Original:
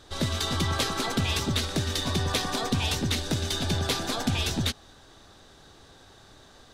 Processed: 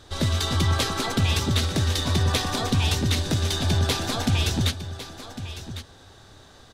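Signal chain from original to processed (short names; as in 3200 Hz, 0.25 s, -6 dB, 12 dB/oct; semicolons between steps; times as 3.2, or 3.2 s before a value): bell 92 Hz +6.5 dB 0.71 oct; echo 1.103 s -12.5 dB; gain +2 dB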